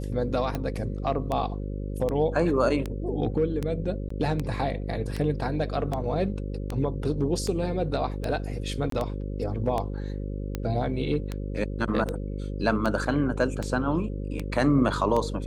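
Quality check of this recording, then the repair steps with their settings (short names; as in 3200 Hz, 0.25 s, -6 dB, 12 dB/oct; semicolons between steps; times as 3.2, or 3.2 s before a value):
buzz 50 Hz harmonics 11 -32 dBFS
tick 78 rpm -16 dBFS
4.09–4.1 gap 14 ms
8.9–8.92 gap 23 ms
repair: de-click; de-hum 50 Hz, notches 11; interpolate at 4.09, 14 ms; interpolate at 8.9, 23 ms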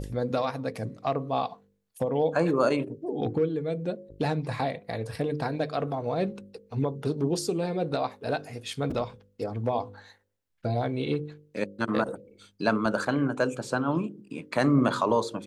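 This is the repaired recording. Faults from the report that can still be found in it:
none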